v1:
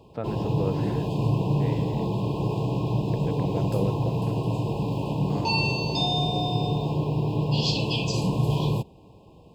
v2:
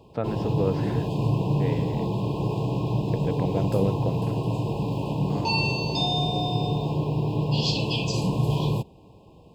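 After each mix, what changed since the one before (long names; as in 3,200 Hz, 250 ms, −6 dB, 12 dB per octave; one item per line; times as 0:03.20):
first voice +4.0 dB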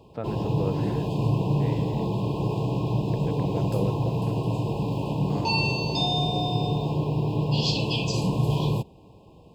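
first voice −5.0 dB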